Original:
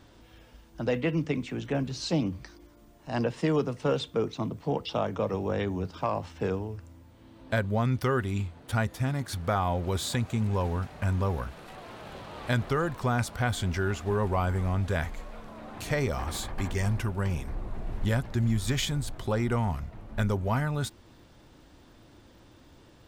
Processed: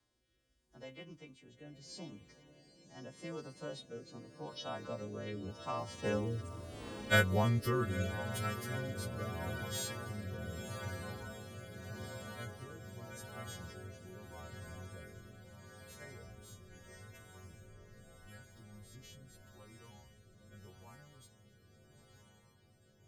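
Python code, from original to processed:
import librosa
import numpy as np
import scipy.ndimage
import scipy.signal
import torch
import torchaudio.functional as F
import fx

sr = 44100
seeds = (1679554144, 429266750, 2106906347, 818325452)

p1 = fx.freq_snap(x, sr, grid_st=2)
p2 = fx.doppler_pass(p1, sr, speed_mps=20, closest_m=3.4, pass_at_s=6.78)
p3 = p2 + fx.echo_diffused(p2, sr, ms=914, feedback_pct=78, wet_db=-10.0, dry=0)
p4 = fx.rotary(p3, sr, hz=0.8)
y = p4 * 10.0 ** (9.5 / 20.0)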